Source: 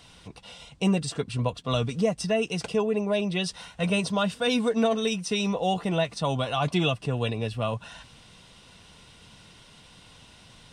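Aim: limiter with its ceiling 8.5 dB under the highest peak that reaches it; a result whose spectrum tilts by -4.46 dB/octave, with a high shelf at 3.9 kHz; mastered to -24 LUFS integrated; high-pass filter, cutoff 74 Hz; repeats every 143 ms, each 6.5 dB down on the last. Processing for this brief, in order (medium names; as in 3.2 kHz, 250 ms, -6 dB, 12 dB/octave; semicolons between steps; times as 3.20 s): high-pass 74 Hz; treble shelf 3.9 kHz +8 dB; peak limiter -19 dBFS; feedback delay 143 ms, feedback 47%, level -6.5 dB; trim +4 dB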